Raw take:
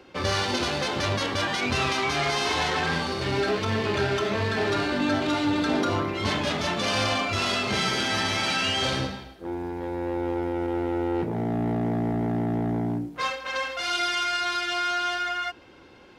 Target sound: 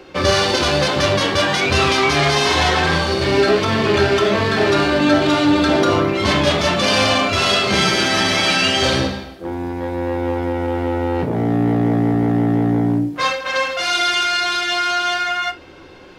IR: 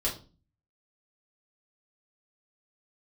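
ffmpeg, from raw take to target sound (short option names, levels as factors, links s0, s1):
-filter_complex "[0:a]asplit=2[s0][s1];[1:a]atrim=start_sample=2205,atrim=end_sample=3528[s2];[s1][s2]afir=irnorm=-1:irlink=0,volume=0.316[s3];[s0][s3]amix=inputs=2:normalize=0,volume=2.11"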